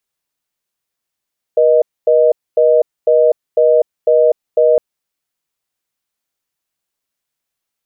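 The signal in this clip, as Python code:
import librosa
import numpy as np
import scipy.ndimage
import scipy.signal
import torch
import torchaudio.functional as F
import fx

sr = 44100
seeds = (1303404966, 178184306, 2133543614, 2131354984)

y = fx.call_progress(sr, length_s=3.21, kind='reorder tone', level_db=-10.0)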